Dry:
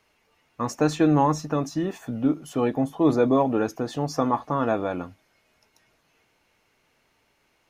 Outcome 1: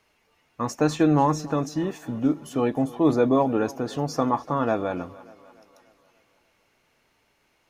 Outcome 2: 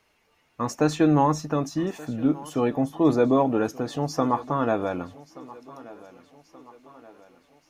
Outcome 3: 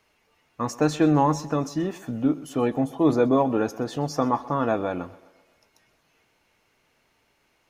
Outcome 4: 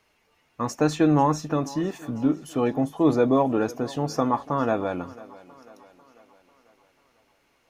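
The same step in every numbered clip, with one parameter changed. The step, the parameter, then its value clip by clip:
thinning echo, time: 0.293, 1.178, 0.128, 0.495 s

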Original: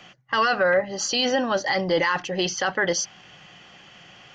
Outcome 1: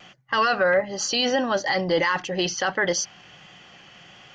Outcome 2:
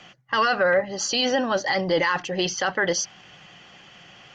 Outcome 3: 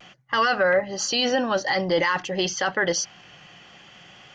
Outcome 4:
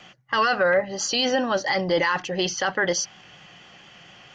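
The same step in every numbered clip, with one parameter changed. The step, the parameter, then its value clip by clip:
vibrato, rate: 1.5, 12, 0.54, 4.2 Hz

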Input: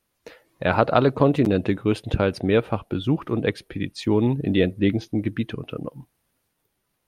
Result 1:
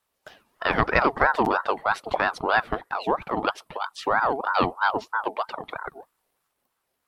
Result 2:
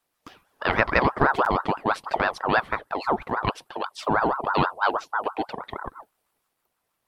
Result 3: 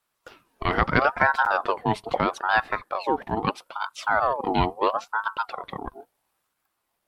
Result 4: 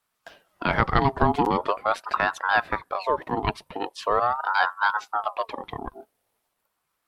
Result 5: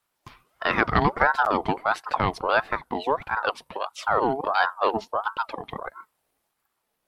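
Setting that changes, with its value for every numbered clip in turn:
ring modulator with a swept carrier, at: 3.1, 6.2, 0.76, 0.42, 1.5 Hz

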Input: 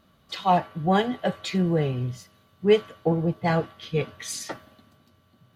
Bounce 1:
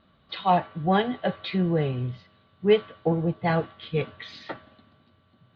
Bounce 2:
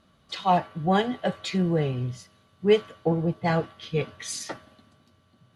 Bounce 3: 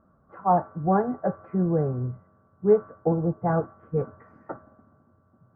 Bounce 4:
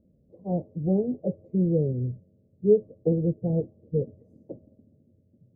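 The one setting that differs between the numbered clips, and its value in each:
elliptic low-pass, frequency: 4000, 11000, 1400, 530 Hz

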